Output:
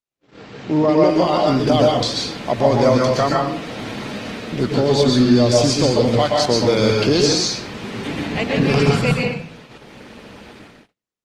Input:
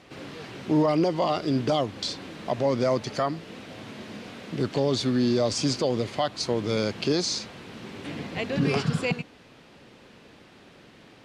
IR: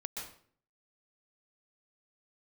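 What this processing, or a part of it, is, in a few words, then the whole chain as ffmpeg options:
speakerphone in a meeting room: -filter_complex "[1:a]atrim=start_sample=2205[a];[0:a][a]afir=irnorm=-1:irlink=0,dynaudnorm=f=130:g=9:m=15dB,agate=range=-45dB:threshold=-38dB:ratio=16:detection=peak,volume=-1dB" -ar 48000 -c:a libopus -b:a 20k

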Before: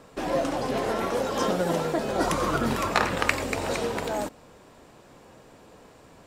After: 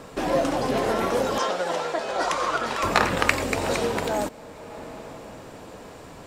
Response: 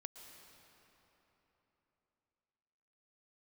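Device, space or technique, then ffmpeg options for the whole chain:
ducked reverb: -filter_complex "[0:a]asplit=3[a][b][c];[1:a]atrim=start_sample=2205[d];[b][d]afir=irnorm=-1:irlink=0[e];[c]apad=whole_len=276384[f];[e][f]sidechaincompress=threshold=-44dB:ratio=8:attack=16:release=492,volume=6dB[g];[a][g]amix=inputs=2:normalize=0,asettb=1/sr,asplit=3[h][i][j];[h]atrim=end=1.384[k];[i]atrim=start=1.38:end=2.83,asetpts=PTS-STARTPTS,afade=t=in:d=0.004:c=qsin,afade=t=out:st=1.446:d=0.004:c=qsin,acrossover=split=480 8000:gain=0.141 1 0.158[l][m][n];[l][m][n]amix=inputs=3:normalize=0[o];[j]atrim=start=2.826[p];[k][o]acrossfade=d=0.004:c1=hsin:c2=qsin[q];[q][p]acrossfade=d=0.004:c1=qsin:c2=hsin,volume=2.5dB"

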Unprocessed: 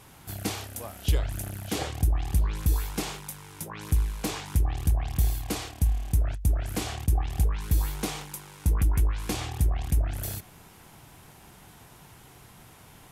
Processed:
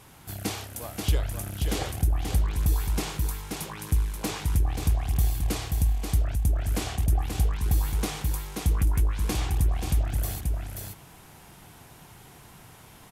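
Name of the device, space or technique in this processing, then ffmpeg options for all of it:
ducked delay: -filter_complex "[0:a]asplit=3[a][b][c];[b]adelay=532,volume=-4dB[d];[c]apad=whole_len=601833[e];[d][e]sidechaincompress=threshold=-26dB:ratio=8:attack=16:release=335[f];[a][f]amix=inputs=2:normalize=0"

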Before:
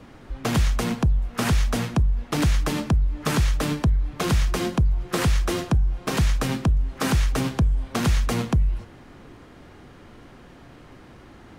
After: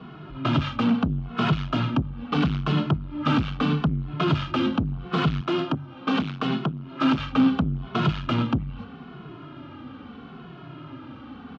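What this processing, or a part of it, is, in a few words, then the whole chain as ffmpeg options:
barber-pole flanger into a guitar amplifier: -filter_complex "[0:a]asplit=2[a][b];[b]adelay=2.3,afreqshift=-0.77[c];[a][c]amix=inputs=2:normalize=1,asoftclip=type=tanh:threshold=-25.5dB,highpass=100,equalizer=f=150:t=q:w=4:g=8,equalizer=f=260:t=q:w=4:g=8,equalizer=f=510:t=q:w=4:g=-5,equalizer=f=1.3k:t=q:w=4:g=8,equalizer=f=1.9k:t=q:w=4:g=-9,equalizer=f=3k:t=q:w=4:g=5,lowpass=f=3.7k:w=0.5412,lowpass=f=3.7k:w=1.3066,asettb=1/sr,asplit=3[d][e][f];[d]atrim=end=5.414[g];[e]atrim=start=5.41:end=7.19,asetpts=PTS-STARTPTS,afade=t=in:d=0.004:c=qsin,afade=t=out:st=1.776:d=0.004:c=qsin,highpass=180[h];[f]atrim=start=7.186[i];[g][h]acrossfade=d=0.004:c1=hsin:c2=qsin[j];[j][i]acrossfade=d=0.004:c1=qsin:c2=hsin,volume=6dB"

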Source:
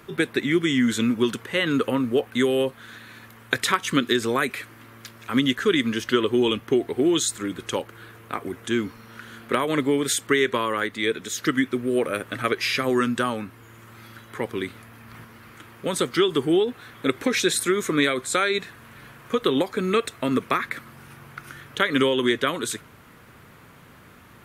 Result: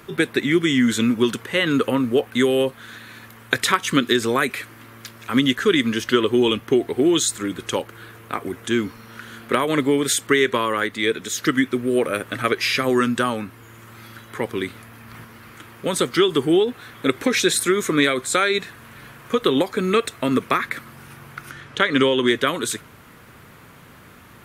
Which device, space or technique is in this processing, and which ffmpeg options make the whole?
exciter from parts: -filter_complex "[0:a]asettb=1/sr,asplit=3[a][b][c];[a]atrim=end=21.514[d];[b]atrim=start=21.51:end=22.28,asetpts=PTS-STARTPTS,afade=t=in:d=0.004:c=qsin,afade=t=out:st=0.766:d=0.004:c=qsin,lowpass=7.3k[e];[c]atrim=start=22.276[f];[d][e]acrossfade=d=0.004:c1=hsin:c2=qsin[g];[g][f]acrossfade=d=0.004:c1=qsin:c2=hsin,asplit=2[h][i];[i]highpass=f=4.7k:p=1,asoftclip=type=tanh:threshold=-35dB,volume=-11.5dB[j];[h][j]amix=inputs=2:normalize=0,volume=3dB"

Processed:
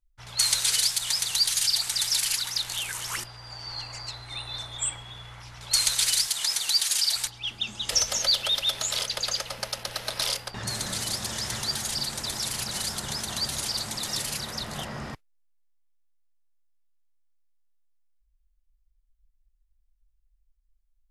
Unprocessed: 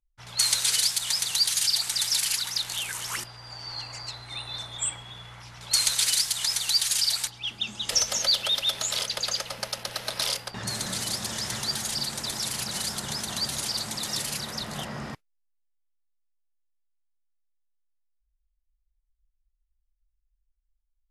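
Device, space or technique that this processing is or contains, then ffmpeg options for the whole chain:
low shelf boost with a cut just above: -filter_complex "[0:a]asettb=1/sr,asplit=3[a][b][c];[a]atrim=end=6.274[d];[b]atrim=start=6.27:end=7.15,asetpts=PTS-STARTPTS,afade=t=in:d=0.004:c=qsin,afade=t=out:st=0.876:d=0.004:c=qsin,highpass=220[e];[c]atrim=start=7.146[f];[d][e]acrossfade=d=0.004:c1=hsin:c2=qsin[g];[g][f]acrossfade=d=0.004:c1=qsin:c2=hsin,lowshelf=f=81:g=8,equalizer=f=180:t=o:w=1:g=-3.5"

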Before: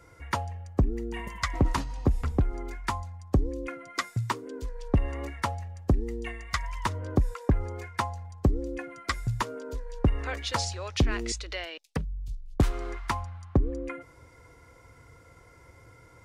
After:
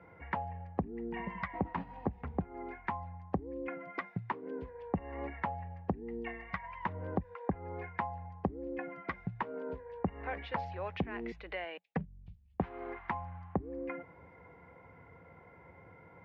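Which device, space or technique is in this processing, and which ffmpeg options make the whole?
bass amplifier: -af "acompressor=threshold=-33dB:ratio=3,highpass=f=77:w=0.5412,highpass=f=77:w=1.3066,equalizer=f=81:t=q:w=4:g=-4,equalizer=f=120:t=q:w=4:g=-10,equalizer=f=180:t=q:w=4:g=10,equalizer=f=310:t=q:w=4:g=-4,equalizer=f=800:t=q:w=4:g=6,equalizer=f=1.3k:t=q:w=4:g=-6,lowpass=f=2.3k:w=0.5412,lowpass=f=2.3k:w=1.3066"

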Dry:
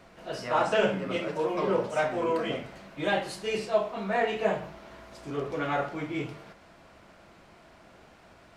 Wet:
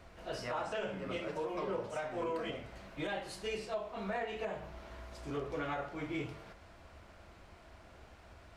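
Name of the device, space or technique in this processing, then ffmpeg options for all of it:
car stereo with a boomy subwoofer: -af "lowshelf=f=110:t=q:w=1.5:g=9,alimiter=level_in=0.5dB:limit=-24dB:level=0:latency=1:release=353,volume=-0.5dB,volume=-3.5dB"

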